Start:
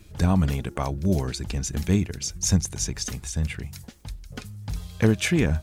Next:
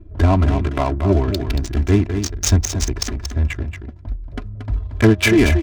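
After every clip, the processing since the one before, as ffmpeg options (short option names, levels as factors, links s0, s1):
-af "aecho=1:1:3:0.98,adynamicsmooth=sensitivity=3:basefreq=530,aecho=1:1:230:0.398,volume=2"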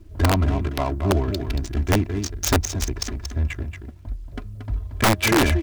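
-af "aeval=exprs='(mod(2.11*val(0)+1,2)-1)/2.11':c=same,acrusher=bits=9:mix=0:aa=0.000001,volume=0.596"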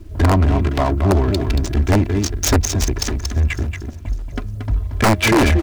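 -filter_complex "[0:a]acrossover=split=1100[s0][s1];[s1]asoftclip=type=hard:threshold=0.141[s2];[s0][s2]amix=inputs=2:normalize=0,aecho=1:1:554|1108|1662:0.0708|0.0283|0.0113,asoftclip=type=tanh:threshold=0.133,volume=2.66"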